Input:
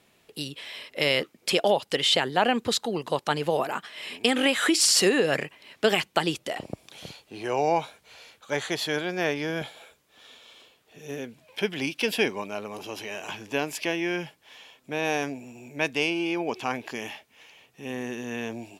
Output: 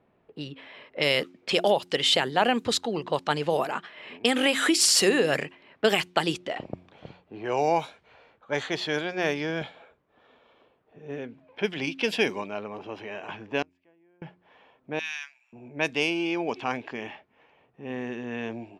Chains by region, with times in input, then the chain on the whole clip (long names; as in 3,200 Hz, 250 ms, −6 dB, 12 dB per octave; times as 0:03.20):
0:13.62–0:14.22: high-shelf EQ 4,000 Hz −6.5 dB + gate with flip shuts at −32 dBFS, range −33 dB
0:14.99–0:15.53: Bessel high-pass filter 2,100 Hz, order 6 + high-shelf EQ 5,700 Hz +8 dB
whole clip: low-pass that shuts in the quiet parts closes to 1,100 Hz, open at −20 dBFS; hum removal 89.5 Hz, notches 4